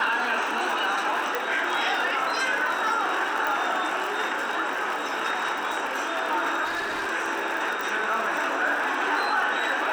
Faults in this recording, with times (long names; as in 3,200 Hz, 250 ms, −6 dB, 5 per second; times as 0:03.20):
surface crackle 84 per second −29 dBFS
0:01.35: click −12 dBFS
0:03.47: click
0:06.64–0:07.08: clipping −25 dBFS
0:07.81: click